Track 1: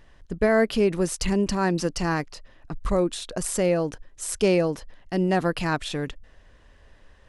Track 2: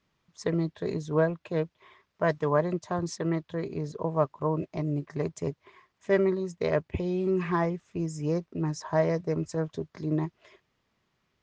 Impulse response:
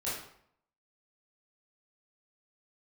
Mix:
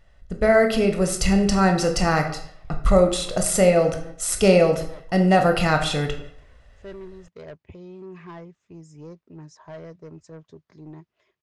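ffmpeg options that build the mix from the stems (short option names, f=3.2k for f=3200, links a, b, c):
-filter_complex "[0:a]agate=range=-7dB:threshold=-46dB:ratio=16:detection=peak,aecho=1:1:1.5:0.52,volume=-1dB,asplit=3[a][b][c];[b]volume=-6.5dB[d];[1:a]asoftclip=type=tanh:threshold=-22dB,adelay=750,volume=-15dB[e];[c]apad=whole_len=536899[f];[e][f]sidechaincompress=threshold=-36dB:ratio=8:attack=16:release=368[g];[2:a]atrim=start_sample=2205[h];[d][h]afir=irnorm=-1:irlink=0[i];[a][g][i]amix=inputs=3:normalize=0,dynaudnorm=f=330:g=7:m=4dB"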